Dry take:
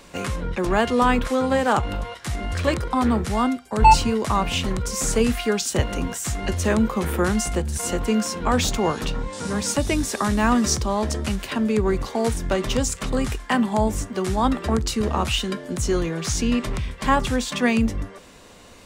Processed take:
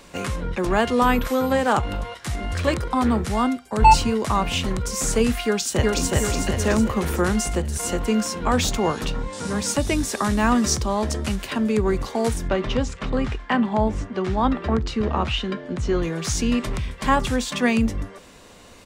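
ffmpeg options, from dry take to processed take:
-filter_complex "[0:a]asettb=1/sr,asplit=3[a][b][c];[a]atrim=end=1.034[d];[b]atrim=start=1.03:end=1.52,asetpts=PTS-STARTPTS,afade=t=in:d=0.004:c=qsin,afade=t=out:st=0.486:d=0.004:c=qsin,aeval=exprs='val(0)+0.00708*sin(2*PI*12000*n/s)':c=same[e];[c]atrim=start=1.516[f];[d][e]acrossfade=d=0.004:c1=hsin:c2=qsin[g];[g][f]acrossfade=d=0.004:c1=qsin:c2=hsin,asplit=2[h][i];[i]afade=t=in:st=5.46:d=0.01,afade=t=out:st=6.05:d=0.01,aecho=0:1:370|740|1110|1480|1850|2220|2590|2960:0.944061|0.519233|0.285578|0.157068|0.0863875|0.0475131|0.0261322|0.0143727[j];[h][j]amix=inputs=2:normalize=0,asettb=1/sr,asplit=3[k][l][m];[k]atrim=end=12.484[n];[l]atrim=start=12.48:end=16.03,asetpts=PTS-STARTPTS,afade=t=in:d=0.004:c=qsin,afade=t=out:st=3.546:d=0.004:c=qsin,lowpass=3.4k[o];[m]atrim=start=16.026[p];[n][o]acrossfade=d=0.004:c1=hsin:c2=qsin[q];[q][p]acrossfade=d=0.004:c1=qsin:c2=hsin"

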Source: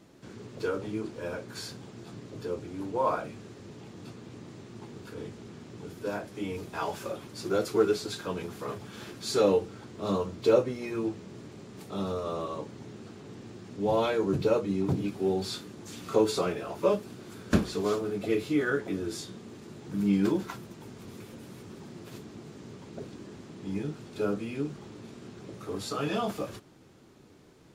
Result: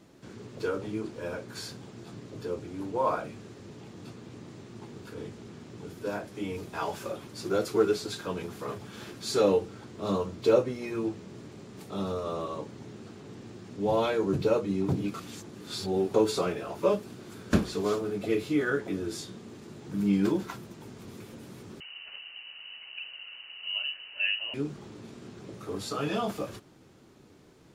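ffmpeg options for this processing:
-filter_complex "[0:a]asettb=1/sr,asplit=3[a][b][c];[a]atrim=end=21.804[d];[b]atrim=start=21.8:end=24.54,asetpts=PTS-STARTPTS,afade=t=in:d=0.004:c=qsin,afade=t=out:st=2.736:d=0.004:c=qsin,lowpass=f=2.6k:t=q:w=0.5098,lowpass=f=2.6k:t=q:w=0.6013,lowpass=f=2.6k:t=q:w=0.9,lowpass=f=2.6k:t=q:w=2.563,afreqshift=-3100[e];[c]atrim=start=24.536[f];[d][e]acrossfade=d=0.004:c1=hsin:c2=qsin[g];[g][f]acrossfade=d=0.004:c1=qsin:c2=hsin,asplit=3[h][i][j];[h]atrim=end=15.142[k];[i]atrim=start=15.138:end=16.142,asetpts=PTS-STARTPTS,areverse[l];[j]atrim=start=16.138[m];[k][l]acrossfade=d=0.004:c1=hsin:c2=hsin[n];[n][m]acrossfade=d=0.004:c1=hsin:c2=hsin"

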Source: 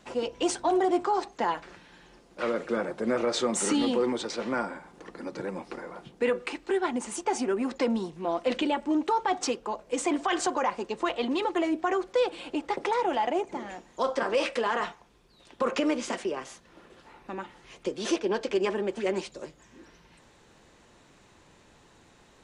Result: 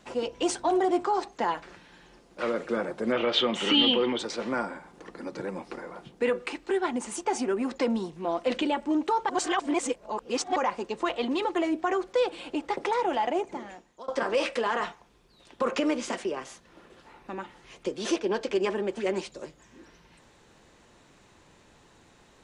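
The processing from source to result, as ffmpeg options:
-filter_complex "[0:a]asettb=1/sr,asplit=3[a][b][c];[a]atrim=end=3.124[d];[b]atrim=start=3.12:end=4.19,asetpts=PTS-STARTPTS,afade=t=in:d=0.004:c=qsin,afade=t=out:st=1.066:d=0.004:c=qsin,lowpass=f=3.1k:t=q:w=8.2[e];[c]atrim=start=4.186[f];[d][e]acrossfade=d=0.004:c1=hsin:c2=qsin[g];[g][f]acrossfade=d=0.004:c1=qsin:c2=hsin,asplit=4[h][i][j][k];[h]atrim=end=9.292[l];[i]atrim=start=9.288:end=10.562,asetpts=PTS-STARTPTS,areverse[m];[j]atrim=start=10.558:end=14.08,asetpts=PTS-STARTPTS,afade=t=out:st=2.902:d=0.62:silence=0.0794328[n];[k]atrim=start=14.08,asetpts=PTS-STARTPTS,afade=t=in:d=0.004:c=hsin:silence=0.0794328[o];[l][m]acrossfade=d=0.004:c1=hsin:c2=hsin[p];[n][o]concat=n=2:v=0:a=1[q];[p][q]acrossfade=d=0.004:c1=hsin:c2=hsin"

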